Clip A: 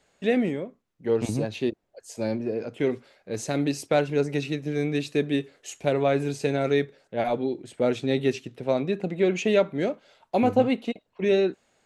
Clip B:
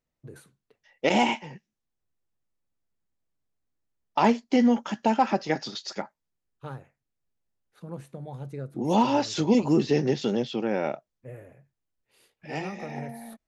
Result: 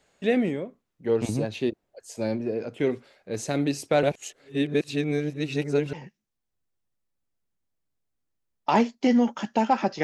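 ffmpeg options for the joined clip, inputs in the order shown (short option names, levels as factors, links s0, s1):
-filter_complex "[0:a]apad=whole_dur=10.03,atrim=end=10.03,asplit=2[s0][s1];[s0]atrim=end=4.032[s2];[s1]atrim=start=4.028:end=5.932,asetpts=PTS-STARTPTS,areverse[s3];[1:a]atrim=start=1.418:end=5.52[s4];[s2][s3]acrossfade=d=0.004:c1=hsin:c2=hsin[s5];[s5][s4]acrossfade=d=0.004:c1=hsin:c2=hsin"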